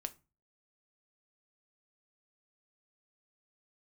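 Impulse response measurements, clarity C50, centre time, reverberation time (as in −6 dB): 19.5 dB, 3 ms, 0.30 s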